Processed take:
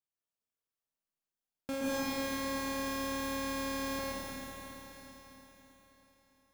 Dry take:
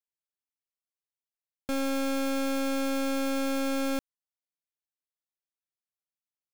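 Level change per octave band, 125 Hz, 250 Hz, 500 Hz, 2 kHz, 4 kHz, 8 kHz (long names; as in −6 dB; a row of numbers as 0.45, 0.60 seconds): can't be measured, −8.0 dB, −6.5 dB, −2.5 dB, −2.5 dB, −2.0 dB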